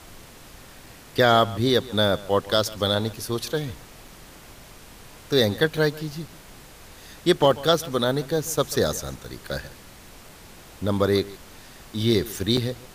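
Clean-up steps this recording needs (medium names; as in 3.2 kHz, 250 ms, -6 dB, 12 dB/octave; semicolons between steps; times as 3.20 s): interpolate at 0.86/4.08/5.77/6.28/7.51/8.57/10.29/12.57 s, 2.7 ms; noise print and reduce 22 dB; inverse comb 141 ms -19.5 dB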